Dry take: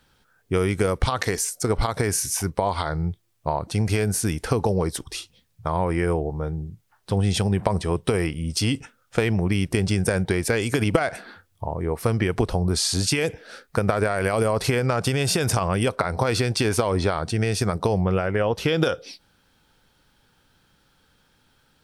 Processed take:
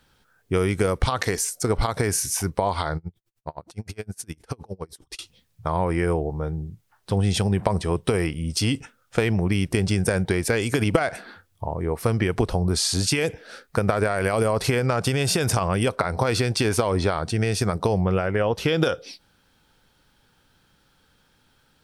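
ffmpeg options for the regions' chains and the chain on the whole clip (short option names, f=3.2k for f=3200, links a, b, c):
-filter_complex "[0:a]asettb=1/sr,asplit=3[a][b][c];[a]atrim=end=2.974[d];[b]atrim=start=2.97:end=5.19,asetpts=PTS-STARTPTS,afade=t=in:d=0.004:c=qsin,afade=t=out:st=2.216:d=0.004:c=qsin,acompressor=threshold=-28dB:ratio=2:attack=3.2:release=140:knee=1:detection=peak,aeval=exprs='val(0)*pow(10,-34*(0.5-0.5*cos(2*PI*9.7*n/s))/20)':c=same[e];[c]atrim=start=5.186[f];[d][e]acrossfade=d=0.004:c1=hsin:c2=qsin[g];[g][f]acrossfade=d=0.004:c1=qsin:c2=hsin"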